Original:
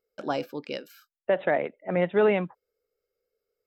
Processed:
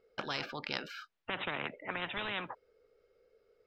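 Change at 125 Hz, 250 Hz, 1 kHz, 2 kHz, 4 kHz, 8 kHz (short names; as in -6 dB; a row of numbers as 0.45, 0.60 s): -13.0 dB, -14.5 dB, -8.0 dB, -4.0 dB, +3.5 dB, n/a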